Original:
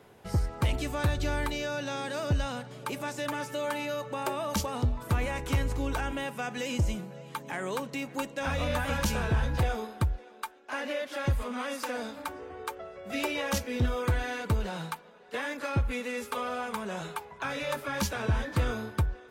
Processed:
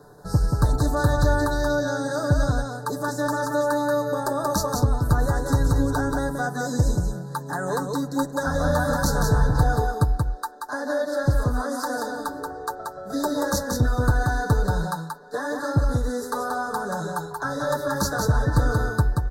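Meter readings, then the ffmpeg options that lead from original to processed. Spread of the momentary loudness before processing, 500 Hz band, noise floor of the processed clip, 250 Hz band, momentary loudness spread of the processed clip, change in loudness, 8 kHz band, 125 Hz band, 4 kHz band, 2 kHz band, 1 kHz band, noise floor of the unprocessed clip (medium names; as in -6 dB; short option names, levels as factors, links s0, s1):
9 LU, +8.5 dB, -36 dBFS, +8.5 dB, 8 LU, +7.5 dB, +7.5 dB, +8.5 dB, +1.5 dB, +5.5 dB, +8.5 dB, -52 dBFS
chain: -af "asuperstop=centerf=2600:order=12:qfactor=1.2,lowshelf=f=65:g=8,aecho=1:1:6.8:0.55,aecho=1:1:181:0.631,volume=1.78"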